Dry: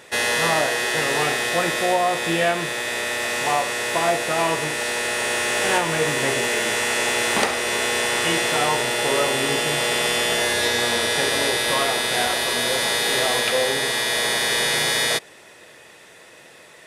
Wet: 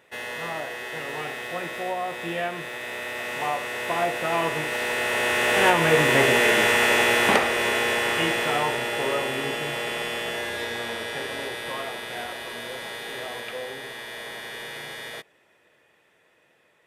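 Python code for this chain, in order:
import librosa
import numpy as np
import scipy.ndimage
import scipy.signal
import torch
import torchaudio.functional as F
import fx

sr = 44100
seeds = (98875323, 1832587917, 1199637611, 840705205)

y = fx.doppler_pass(x, sr, speed_mps=5, closest_m=5.2, pass_at_s=6.44)
y = fx.band_shelf(y, sr, hz=6500.0, db=-8.5, octaves=1.7)
y = F.gain(torch.from_numpy(y), 4.0).numpy()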